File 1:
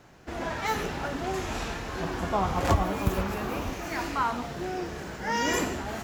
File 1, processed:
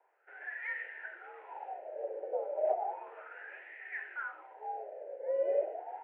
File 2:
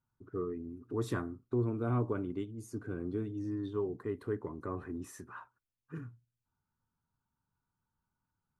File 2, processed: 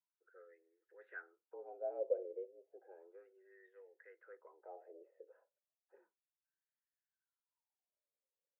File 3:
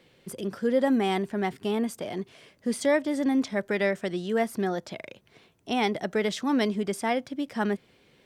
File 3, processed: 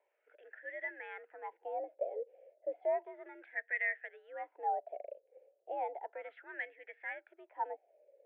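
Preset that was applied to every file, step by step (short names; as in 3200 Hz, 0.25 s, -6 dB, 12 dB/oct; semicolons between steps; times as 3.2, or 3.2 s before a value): wah 0.33 Hz 450–1800 Hz, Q 9.4; fixed phaser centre 440 Hz, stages 4; mistuned SSB +75 Hz 250–2500 Hz; gain +7 dB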